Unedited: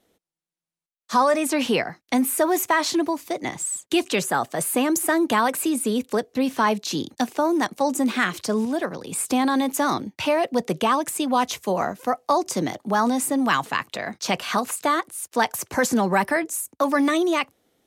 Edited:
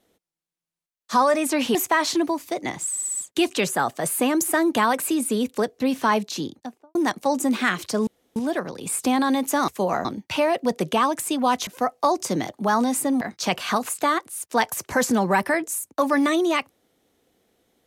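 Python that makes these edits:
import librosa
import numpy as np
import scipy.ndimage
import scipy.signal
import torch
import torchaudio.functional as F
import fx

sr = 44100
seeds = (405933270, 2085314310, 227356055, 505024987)

y = fx.studio_fade_out(x, sr, start_s=6.73, length_s=0.77)
y = fx.edit(y, sr, fx.cut(start_s=1.75, length_s=0.79),
    fx.stutter(start_s=3.7, slice_s=0.06, count=5),
    fx.insert_room_tone(at_s=8.62, length_s=0.29),
    fx.move(start_s=11.56, length_s=0.37, to_s=9.94),
    fx.cut(start_s=13.47, length_s=0.56), tone=tone)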